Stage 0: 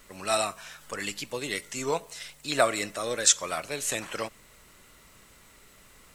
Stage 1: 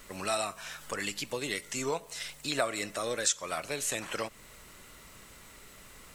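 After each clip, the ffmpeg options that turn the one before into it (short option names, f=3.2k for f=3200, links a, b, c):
-af "acompressor=threshold=-37dB:ratio=2,volume=3dB"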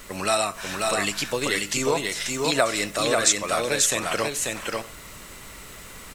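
-af "aecho=1:1:539|628:0.708|0.106,volume=8.5dB"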